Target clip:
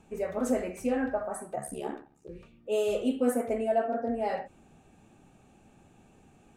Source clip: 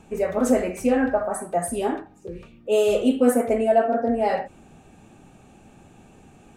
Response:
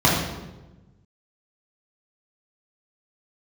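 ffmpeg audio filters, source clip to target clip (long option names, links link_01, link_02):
-filter_complex "[0:a]asplit=3[link_01][link_02][link_03];[link_01]afade=type=out:start_time=1.55:duration=0.02[link_04];[link_02]aeval=exprs='val(0)*sin(2*PI*35*n/s)':channel_layout=same,afade=type=in:start_time=1.55:duration=0.02,afade=type=out:start_time=2.28:duration=0.02[link_05];[link_03]afade=type=in:start_time=2.28:duration=0.02[link_06];[link_04][link_05][link_06]amix=inputs=3:normalize=0,volume=-8.5dB"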